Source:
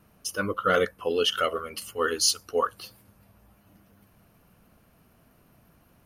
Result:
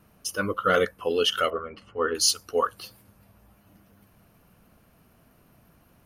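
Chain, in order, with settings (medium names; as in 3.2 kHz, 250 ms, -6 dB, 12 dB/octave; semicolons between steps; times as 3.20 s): 1.50–2.15 s: low-pass 1.6 kHz 12 dB/octave; trim +1 dB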